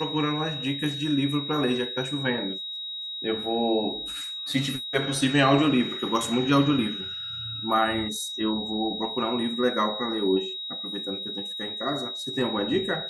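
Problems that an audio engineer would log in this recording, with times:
tone 3800 Hz -32 dBFS

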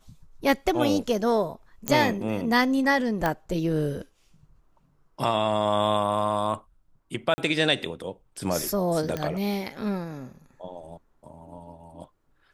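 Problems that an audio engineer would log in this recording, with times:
1.88 pop -8 dBFS
3.26 pop -11 dBFS
7.34–7.38 gap 40 ms
9.17 pop -15 dBFS

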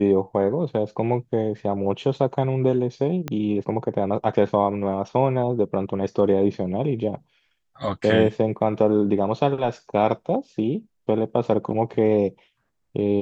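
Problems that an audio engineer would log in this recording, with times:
3.28 pop -13 dBFS

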